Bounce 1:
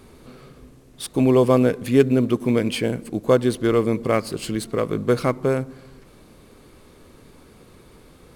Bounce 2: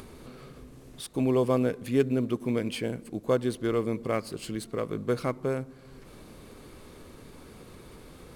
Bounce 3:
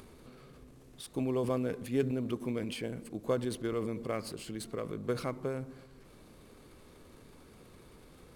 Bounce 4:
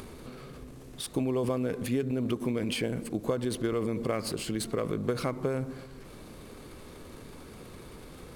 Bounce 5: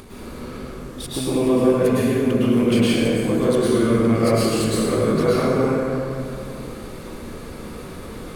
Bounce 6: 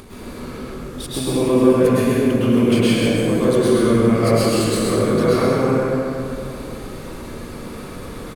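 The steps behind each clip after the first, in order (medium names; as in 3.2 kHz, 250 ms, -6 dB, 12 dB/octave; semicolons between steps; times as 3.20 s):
upward compressor, threshold -29 dBFS; trim -8.5 dB
transient shaper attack +4 dB, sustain +8 dB; trim -8.5 dB
compression 12:1, threshold -34 dBFS, peak gain reduction 11 dB; trim +9 dB
plate-style reverb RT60 2.6 s, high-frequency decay 0.5×, pre-delay 95 ms, DRR -9.5 dB; trim +2 dB
delay 131 ms -4 dB; trim +1 dB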